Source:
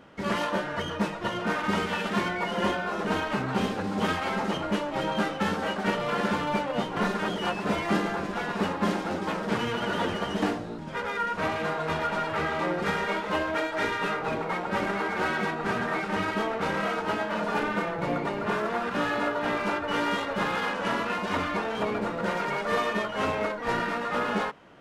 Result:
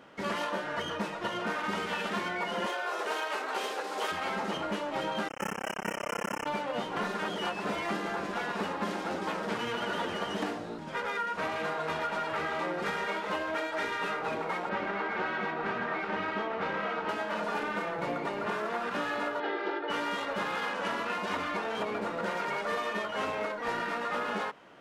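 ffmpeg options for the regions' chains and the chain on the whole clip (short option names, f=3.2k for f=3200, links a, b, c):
-filter_complex "[0:a]asettb=1/sr,asplit=3[a][b][c];[a]atrim=end=2.664[d];[b]atrim=start=2.66:end=4.12,asetpts=PTS-STARTPTS,afade=t=in:d=0.004:c=qsin,afade=t=out:st=1.456:d=0.004:c=qsin,highpass=f=380:w=0.5412,highpass=f=380:w=1.3066,highshelf=f=5.7k:g=6.5[e];[c]atrim=start=4.116[f];[d][e]acrossfade=d=0.004:c1=hsin:c2=qsin[g];[g][f]acrossfade=d=0.004:c1=qsin:c2=hsin,asettb=1/sr,asplit=3[h][i][j];[h]atrim=end=5.284[k];[i]atrim=start=5.28:end=6.46,asetpts=PTS-STARTPTS,afade=t=in:d=0.004:c=qsin,afade=t=out:st=1.176:d=0.004:c=qsin,tremolo=f=33:d=0.889,acrusher=bits=4:mix=0:aa=0.5,asuperstop=centerf=4000:order=20:qfactor=2[l];[j]atrim=start=6.456[m];[k][l]acrossfade=d=0.004:c1=hsin:c2=qsin[n];[n][m]acrossfade=d=0.004:c1=qsin:c2=hsin,asettb=1/sr,asplit=3[o][p][q];[o]atrim=end=14.694[r];[p]atrim=start=14.69:end=17.09,asetpts=PTS-STARTPTS,afade=t=in:d=0.004:c=qsin,afade=t=out:st=2.396:d=0.004:c=qsin,lowpass=3.5k,aecho=1:1:377:0.211,atrim=end_sample=105840[s];[q]atrim=start=17.086[t];[r][s]acrossfade=d=0.004:c1=hsin:c2=qsin[u];[u][t]acrossfade=d=0.004:c1=qsin:c2=hsin,asettb=1/sr,asplit=3[v][w][x];[v]atrim=end=19.404[y];[w]atrim=start=19.4:end=19.9,asetpts=PTS-STARTPTS,afade=t=in:d=0.004:c=qsin,afade=t=out:st=0.496:d=0.004:c=qsin,highpass=330,equalizer=f=360:t=q:w=4:g=10,equalizer=f=1.1k:t=q:w=4:g=-9,equalizer=f=2.5k:t=q:w=4:g=-7,lowpass=f=4k:w=0.5412,lowpass=f=4k:w=1.3066,aecho=1:1:2.4:0.47,atrim=end_sample=22050[z];[x]atrim=start=19.896[aa];[y][z]acrossfade=d=0.004:c1=hsin:c2=qsin[ab];[ab][aa]acrossfade=d=0.004:c1=qsin:c2=hsin,lowshelf=f=170:g=-12,acompressor=threshold=-29dB:ratio=6"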